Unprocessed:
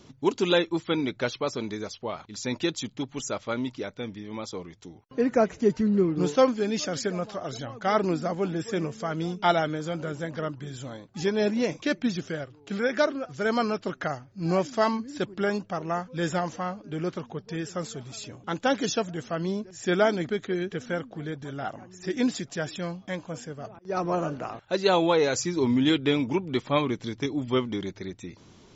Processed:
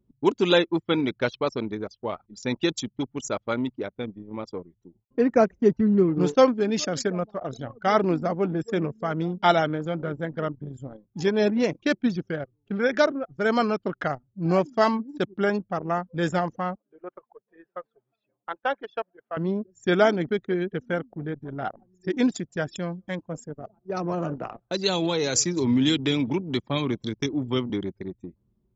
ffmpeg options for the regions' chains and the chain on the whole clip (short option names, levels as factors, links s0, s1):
-filter_complex "[0:a]asettb=1/sr,asplit=3[s0][s1][s2];[s0]atrim=end=16.754[s3];[s1]atrim=start=16.75:end=19.37,asetpts=PTS-STARTPTS,afade=t=in:d=0.004:c=qsin,afade=t=out:st=2.616:d=0.004:c=qsin,highpass=680,lowpass=3600,aemphasis=mode=reproduction:type=75kf[s4];[s2]atrim=start=19.366[s5];[s3][s4]acrossfade=d=0.004:c1=hsin:c2=qsin[s6];[s6][s5]acrossfade=d=0.004:c1=qsin:c2=hsin,asettb=1/sr,asplit=3[s7][s8][s9];[s7]atrim=end=22.714[s10];[s8]atrim=start=22.71:end=27.7,asetpts=PTS-STARTPTS,afade=t=in:d=0.004:c=qsin,afade=t=out:st=4.986:d=0.004:c=qsin,highshelf=f=5700:g=9.5,acrossover=split=280|3000[s11][s12][s13];[s12]acompressor=threshold=0.0355:ratio=6:attack=3.2:release=140:knee=2.83:detection=peak[s14];[s11][s14][s13]amix=inputs=3:normalize=0,aecho=1:1:189:0.0794,atrim=end_sample=220059[s15];[s9]atrim=start=27.696[s16];[s10][s15]acrossfade=d=0.004:c1=hsin:c2=qsin[s17];[s17][s16]acrossfade=d=0.004:c1=qsin:c2=hsin,highpass=50,anlmdn=10,volume=1.41"